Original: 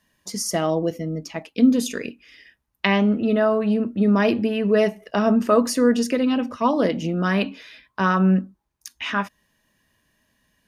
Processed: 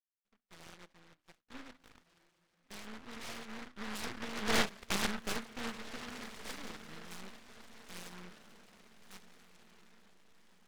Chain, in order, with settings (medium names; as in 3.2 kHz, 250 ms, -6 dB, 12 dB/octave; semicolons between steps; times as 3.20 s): fade-in on the opening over 0.73 s; Doppler pass-by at 4.73 s, 17 m/s, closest 1.8 m; steep low-pass 1.3 kHz 36 dB/octave; tilt EQ +3 dB/octave; in parallel at +1 dB: compression, threshold -47 dBFS, peak gain reduction 22.5 dB; on the sum: half-wave rectifier; on a send: echo that smears into a reverb 1485 ms, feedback 42%, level -14.5 dB; on the sum: delay time shaken by noise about 1.3 kHz, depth 0.43 ms; trim -1 dB